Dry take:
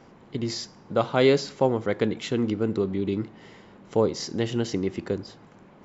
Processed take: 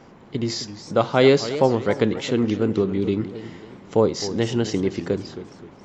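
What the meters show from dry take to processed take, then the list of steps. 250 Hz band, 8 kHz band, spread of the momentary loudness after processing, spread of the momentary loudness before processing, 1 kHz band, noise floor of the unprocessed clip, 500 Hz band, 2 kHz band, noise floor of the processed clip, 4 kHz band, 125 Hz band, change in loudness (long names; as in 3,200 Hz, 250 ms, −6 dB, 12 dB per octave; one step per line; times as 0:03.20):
+4.5 dB, can't be measured, 18 LU, 11 LU, +4.5 dB, −52 dBFS, +4.5 dB, +4.0 dB, −47 dBFS, +4.0 dB, +4.5 dB, +4.0 dB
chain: feedback echo with a swinging delay time 266 ms, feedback 41%, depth 203 cents, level −13 dB
level +4 dB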